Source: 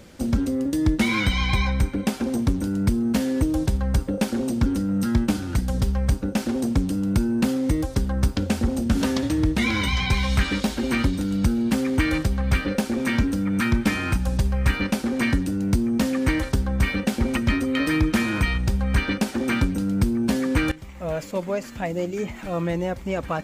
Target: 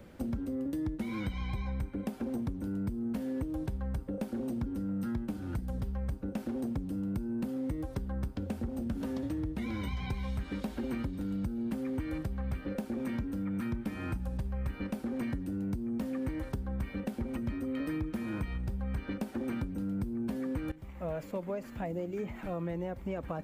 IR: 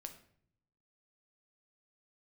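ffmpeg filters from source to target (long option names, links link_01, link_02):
-filter_complex "[0:a]equalizer=frequency=6200:width_type=o:width=2:gain=-12.5,acrossover=split=330|800|4300[link_01][link_02][link_03][link_04];[link_03]alimiter=level_in=5.5dB:limit=-24dB:level=0:latency=1:release=285,volume=-5.5dB[link_05];[link_01][link_02][link_05][link_04]amix=inputs=4:normalize=0,acompressor=threshold=-27dB:ratio=6,volume=-5dB"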